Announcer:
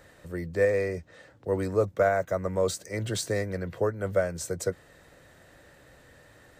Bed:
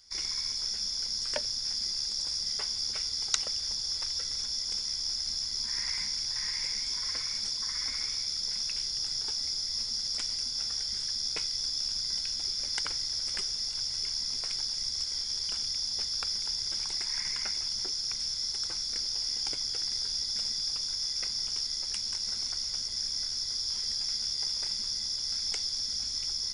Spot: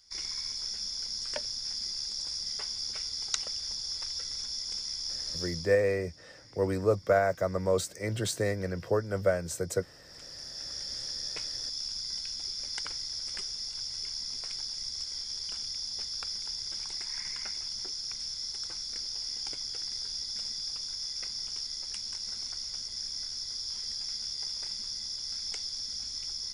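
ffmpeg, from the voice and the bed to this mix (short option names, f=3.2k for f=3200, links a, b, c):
-filter_complex "[0:a]adelay=5100,volume=-1dB[a];[1:a]volume=16.5dB,afade=t=out:st=5.43:d=0.34:silence=0.0944061,afade=t=in:st=10.05:d=0.87:silence=0.105925[b];[a][b]amix=inputs=2:normalize=0"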